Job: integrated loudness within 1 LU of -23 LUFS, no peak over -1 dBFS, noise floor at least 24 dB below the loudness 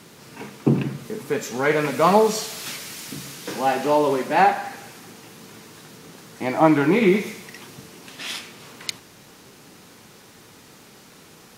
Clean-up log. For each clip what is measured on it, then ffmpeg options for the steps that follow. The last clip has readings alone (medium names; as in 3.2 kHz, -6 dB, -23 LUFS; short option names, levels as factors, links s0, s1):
loudness -22.0 LUFS; peak level -2.5 dBFS; loudness target -23.0 LUFS
-> -af "volume=0.891"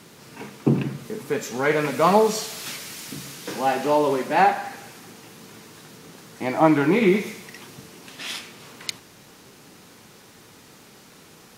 loudness -23.0 LUFS; peak level -3.5 dBFS; noise floor -50 dBFS